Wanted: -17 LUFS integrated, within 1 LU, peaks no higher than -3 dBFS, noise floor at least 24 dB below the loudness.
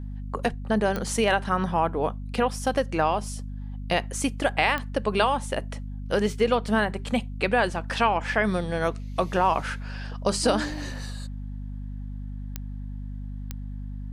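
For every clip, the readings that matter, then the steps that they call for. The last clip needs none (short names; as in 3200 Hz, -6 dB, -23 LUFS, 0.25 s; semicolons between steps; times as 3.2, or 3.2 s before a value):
clicks 4; hum 50 Hz; harmonics up to 250 Hz; hum level -32 dBFS; loudness -26.0 LUFS; peak -7.5 dBFS; loudness target -17.0 LUFS
-> de-click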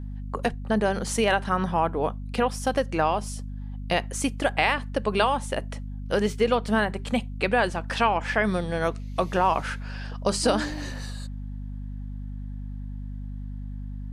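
clicks 0; hum 50 Hz; harmonics up to 250 Hz; hum level -32 dBFS
-> notches 50/100/150/200/250 Hz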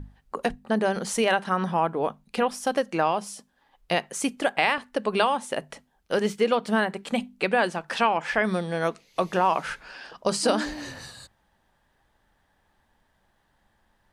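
hum none; loudness -26.0 LUFS; peak -7.5 dBFS; loudness target -17.0 LUFS
-> gain +9 dB; limiter -3 dBFS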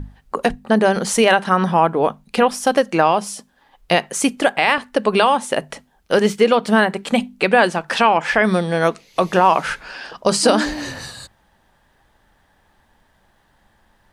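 loudness -17.5 LUFS; peak -3.0 dBFS; noise floor -60 dBFS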